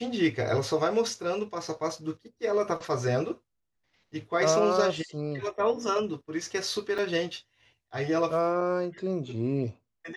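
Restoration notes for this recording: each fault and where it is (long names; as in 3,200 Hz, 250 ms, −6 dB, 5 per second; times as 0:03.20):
0:06.98–0:06.99: drop-out 5.1 ms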